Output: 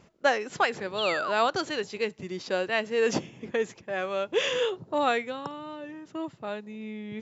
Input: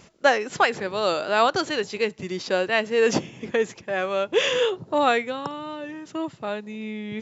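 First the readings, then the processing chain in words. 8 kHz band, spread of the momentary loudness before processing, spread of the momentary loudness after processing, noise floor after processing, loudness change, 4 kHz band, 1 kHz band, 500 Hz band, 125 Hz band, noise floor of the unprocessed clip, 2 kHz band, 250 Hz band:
n/a, 12 LU, 12 LU, -57 dBFS, -4.5 dB, -4.5 dB, -5.0 dB, -5.0 dB, -5.0 dB, -51 dBFS, -4.5 dB, -5.0 dB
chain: painted sound fall, 0.98–1.32, 930–3600 Hz -27 dBFS; mismatched tape noise reduction decoder only; gain -5 dB

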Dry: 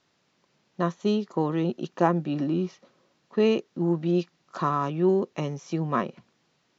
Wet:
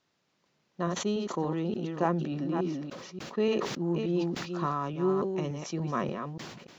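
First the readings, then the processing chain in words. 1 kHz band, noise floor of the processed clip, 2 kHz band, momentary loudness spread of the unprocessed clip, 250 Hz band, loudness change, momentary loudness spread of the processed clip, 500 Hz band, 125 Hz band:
-4.5 dB, -75 dBFS, -2.5 dB, 8 LU, -4.5 dB, -4.5 dB, 9 LU, -4.5 dB, -4.0 dB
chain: reverse delay 0.29 s, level -6.5 dB; sustainer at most 40 dB/s; gain -6 dB

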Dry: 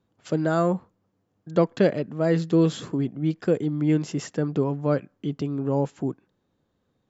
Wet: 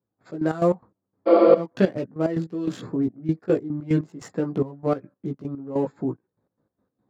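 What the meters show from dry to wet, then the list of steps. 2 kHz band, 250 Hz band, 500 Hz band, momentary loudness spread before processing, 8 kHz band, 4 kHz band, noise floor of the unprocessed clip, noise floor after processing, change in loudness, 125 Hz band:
-2.5 dB, -0.5 dB, +3.0 dB, 9 LU, n/a, -5.0 dB, -73 dBFS, -83 dBFS, +1.0 dB, -3.5 dB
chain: Wiener smoothing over 15 samples; spectral repair 1.3–1.55, 200–5200 Hz after; HPF 99 Hz; chorus voices 4, 0.38 Hz, delay 17 ms, depth 2.1 ms; step gate "..x.x.x.x..xxxx" 146 bpm -12 dB; gain +5 dB

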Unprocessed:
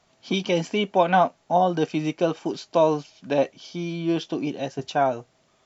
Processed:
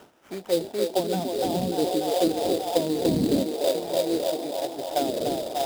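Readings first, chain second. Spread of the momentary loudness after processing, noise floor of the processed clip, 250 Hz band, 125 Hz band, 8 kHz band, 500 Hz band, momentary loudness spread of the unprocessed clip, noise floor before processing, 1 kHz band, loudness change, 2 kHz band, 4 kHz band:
5 LU, -51 dBFS, 0.0 dB, -3.5 dB, n/a, -0.5 dB, 10 LU, -65 dBFS, -6.5 dB, -1.5 dB, -10.5 dB, +1.0 dB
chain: wind noise 310 Hz -29 dBFS; band-limited delay 0.293 s, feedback 75%, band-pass 630 Hz, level -4.5 dB; auto-wah 230–1500 Hz, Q 2.3, down, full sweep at -13.5 dBFS; bell 1100 Hz -10 dB 0.32 oct; sample-rate reducer 4300 Hz, jitter 20%; gain +2.5 dB

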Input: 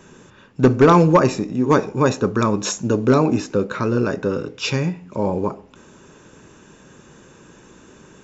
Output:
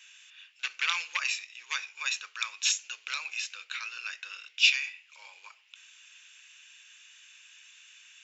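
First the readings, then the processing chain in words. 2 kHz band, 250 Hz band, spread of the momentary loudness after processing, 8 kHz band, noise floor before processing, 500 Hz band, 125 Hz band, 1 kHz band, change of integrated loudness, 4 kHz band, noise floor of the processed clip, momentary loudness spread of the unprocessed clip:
-1.0 dB, under -40 dB, 16 LU, n/a, -48 dBFS, under -40 dB, under -40 dB, -21.5 dB, -11.5 dB, +3.0 dB, -61 dBFS, 11 LU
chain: ladder high-pass 2000 Hz, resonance 30%; bell 2700 Hz +8 dB 1.2 oct; gain +2 dB

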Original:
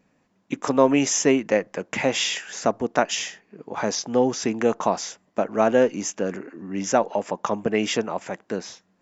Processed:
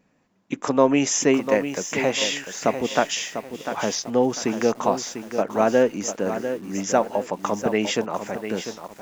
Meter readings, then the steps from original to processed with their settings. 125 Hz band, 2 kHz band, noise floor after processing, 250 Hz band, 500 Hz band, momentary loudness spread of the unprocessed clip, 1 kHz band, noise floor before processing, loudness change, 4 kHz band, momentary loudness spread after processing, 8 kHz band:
+0.5 dB, +0.5 dB, -64 dBFS, +0.5 dB, +0.5 dB, 13 LU, +0.5 dB, -67 dBFS, +0.5 dB, +0.5 dB, 10 LU, n/a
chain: lo-fi delay 0.697 s, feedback 35%, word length 7-bit, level -9 dB

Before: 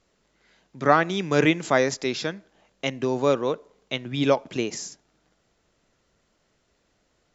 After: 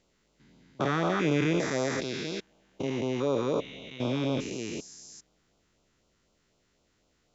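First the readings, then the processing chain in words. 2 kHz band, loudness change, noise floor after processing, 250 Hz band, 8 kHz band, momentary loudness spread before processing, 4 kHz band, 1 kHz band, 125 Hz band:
-8.0 dB, -5.5 dB, -72 dBFS, -3.5 dB, n/a, 12 LU, -6.0 dB, -9.0 dB, -1.5 dB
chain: stepped spectrum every 0.4 s; LFO notch sine 4 Hz 550–1900 Hz

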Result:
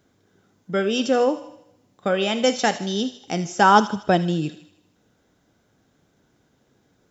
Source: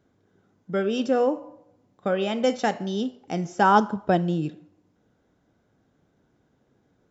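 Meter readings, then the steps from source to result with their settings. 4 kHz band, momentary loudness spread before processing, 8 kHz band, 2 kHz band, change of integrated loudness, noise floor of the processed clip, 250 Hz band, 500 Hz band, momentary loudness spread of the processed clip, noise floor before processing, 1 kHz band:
+9.0 dB, 12 LU, n/a, +5.5 dB, +3.0 dB, -65 dBFS, +2.0 dB, +2.5 dB, 13 LU, -68 dBFS, +3.5 dB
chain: high shelf 2200 Hz +9.5 dB; on a send: thin delay 78 ms, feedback 53%, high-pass 2600 Hz, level -10 dB; on the sum: gain +2 dB

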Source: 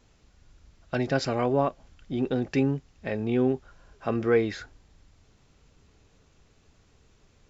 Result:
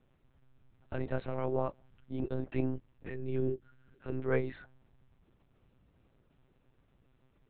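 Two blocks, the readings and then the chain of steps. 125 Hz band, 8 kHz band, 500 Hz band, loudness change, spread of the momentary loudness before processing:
-6.0 dB, n/a, -8.5 dB, -9.0 dB, 10 LU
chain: spectral gain 3.06–4.17, 500–1300 Hz -12 dB; high shelf 2200 Hz -9 dB; monotone LPC vocoder at 8 kHz 130 Hz; gain -7.5 dB

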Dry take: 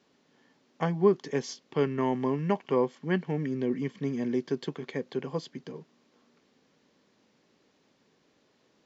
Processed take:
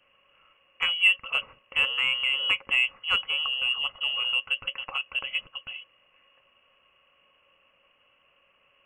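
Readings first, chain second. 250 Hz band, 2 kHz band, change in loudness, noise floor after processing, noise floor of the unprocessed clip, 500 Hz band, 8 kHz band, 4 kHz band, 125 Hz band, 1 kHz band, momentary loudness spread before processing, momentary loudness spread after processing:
under -25 dB, +17.5 dB, +5.5 dB, -66 dBFS, -69 dBFS, -20.0 dB, n/a, +23.5 dB, under -20 dB, -3.0 dB, 11 LU, 11 LU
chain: vibrato 0.33 Hz 12 cents; inverted band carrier 3100 Hz; in parallel at -12 dB: soft clip -22.5 dBFS, distortion -11 dB; on the sum: small resonant body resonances 550/1100 Hz, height 17 dB, ringing for 55 ms

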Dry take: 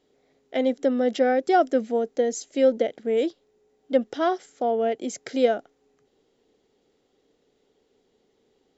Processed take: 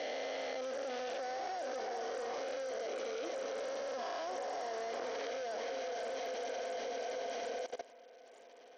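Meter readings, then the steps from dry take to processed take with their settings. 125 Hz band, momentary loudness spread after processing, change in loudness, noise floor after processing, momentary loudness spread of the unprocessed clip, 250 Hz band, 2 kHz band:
n/a, 2 LU, -15.5 dB, -58 dBFS, 7 LU, -25.0 dB, -8.0 dB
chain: spectral swells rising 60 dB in 2.19 s; sample-and-hold 7×; dynamic EQ 1300 Hz, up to -4 dB, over -42 dBFS, Q 7.1; notch 1400 Hz, Q 7.3; diffused feedback echo 0.46 s, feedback 51%, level -7.5 dB; compressor 6:1, threshold -29 dBFS, peak gain reduction 16.5 dB; soft clip -28 dBFS, distortion -15 dB; HPF 670 Hz 12 dB/oct; limiter -30 dBFS, peak gain reduction 6 dB; level quantiser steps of 18 dB; high shelf 5300 Hz -7.5 dB; gain +15 dB; SBC 64 kbps 48000 Hz

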